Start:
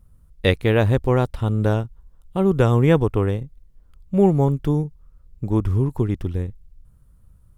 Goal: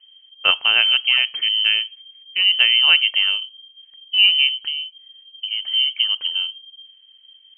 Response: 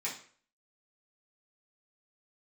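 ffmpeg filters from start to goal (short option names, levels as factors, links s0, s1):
-filter_complex "[0:a]asettb=1/sr,asplit=3[s0][s1][s2];[s0]atrim=end=4.474[s3];[s1]atrim=start=4.47:end=5.73,asetpts=PTS-STARTPTS,afade=t=in:d=0.004:c=qsin,afade=t=out:st=1.256:d=0.004:c=qsin,acrossover=split=100|1900[s4][s5][s6];[s4]acompressor=threshold=0.02:ratio=4[s7];[s5]acompressor=threshold=0.0501:ratio=4[s8];[s6]acompressor=threshold=0.00178:ratio=4[s9];[s7][s8][s9]amix=inputs=3:normalize=0[s10];[s2]atrim=start=5.726[s11];[s3][s10]acrossfade=d=0.004:c1=hsin:c2=qsin[s12];[s12][s11]acrossfade=d=0.004:c1=qsin:c2=hsin,asplit=2[s13][s14];[1:a]atrim=start_sample=2205,afade=t=out:st=0.21:d=0.01,atrim=end_sample=9702[s15];[s14][s15]afir=irnorm=-1:irlink=0,volume=0.0841[s16];[s13][s16]amix=inputs=2:normalize=0,lowpass=f=2700:t=q:w=0.5098,lowpass=f=2700:t=q:w=0.6013,lowpass=f=2700:t=q:w=0.9,lowpass=f=2700:t=q:w=2.563,afreqshift=-3200,volume=1.12"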